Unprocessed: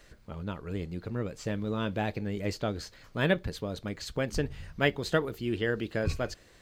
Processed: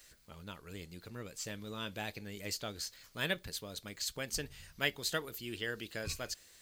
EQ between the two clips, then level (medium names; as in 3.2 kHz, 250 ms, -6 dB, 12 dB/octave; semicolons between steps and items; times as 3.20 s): pre-emphasis filter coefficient 0.9; +6.5 dB